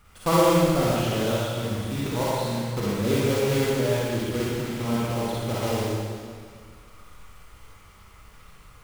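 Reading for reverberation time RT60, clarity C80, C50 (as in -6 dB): 1.9 s, -1.5 dB, -5.5 dB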